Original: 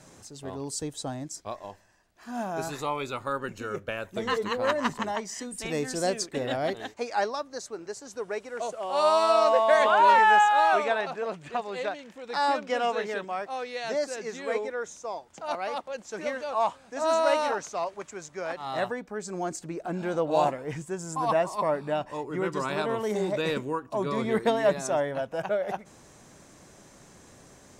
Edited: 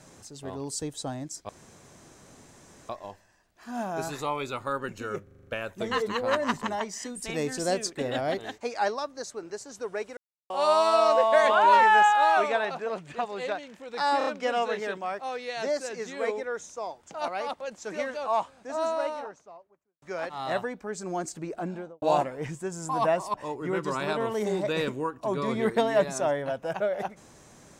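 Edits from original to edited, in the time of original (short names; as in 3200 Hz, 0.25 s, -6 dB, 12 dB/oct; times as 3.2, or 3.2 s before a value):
1.49 insert room tone 1.40 s
3.83 stutter 0.04 s, 7 plays
8.53–8.86 mute
12.54 stutter 0.03 s, 4 plays
16.38–18.29 studio fade out
19.83–20.29 studio fade out
21.61–22.03 cut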